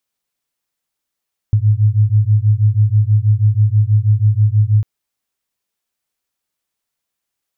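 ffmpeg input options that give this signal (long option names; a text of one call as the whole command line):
ffmpeg -f lavfi -i "aevalsrc='0.237*(sin(2*PI*103*t)+sin(2*PI*109.2*t))':duration=3.3:sample_rate=44100" out.wav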